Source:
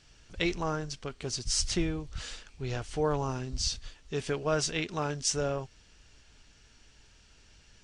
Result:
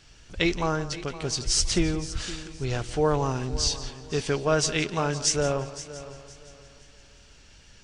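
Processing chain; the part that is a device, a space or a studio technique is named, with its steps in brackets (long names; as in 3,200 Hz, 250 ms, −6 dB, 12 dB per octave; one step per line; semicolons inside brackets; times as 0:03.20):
multi-head tape echo (echo machine with several playback heads 172 ms, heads first and third, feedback 45%, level −16 dB; tape wow and flutter 24 cents)
level +5.5 dB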